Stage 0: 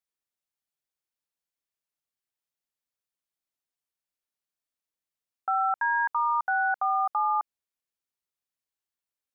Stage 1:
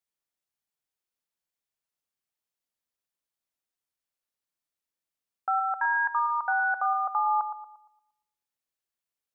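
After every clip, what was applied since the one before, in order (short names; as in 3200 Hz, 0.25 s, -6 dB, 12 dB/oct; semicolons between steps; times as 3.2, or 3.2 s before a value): analogue delay 0.116 s, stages 1024, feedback 39%, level -9 dB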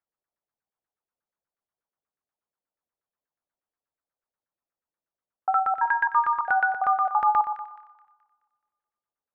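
LFO low-pass saw down 8.3 Hz 470–1700 Hz; thin delay 0.213 s, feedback 40%, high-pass 1600 Hz, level -12 dB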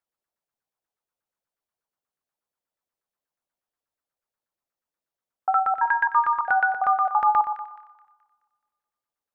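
notches 50/100/150/200/250/300/350/400/450 Hz; gain +1.5 dB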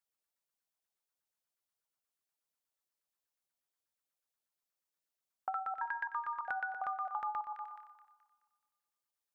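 high shelf 2200 Hz +10 dB; compressor 6:1, threshold -27 dBFS, peak gain reduction 13.5 dB; gain -8.5 dB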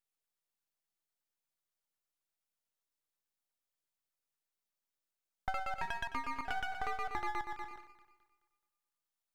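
dynamic EQ 680 Hz, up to +4 dB, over -53 dBFS, Q 1.5; half-wave rectifier; gain +2 dB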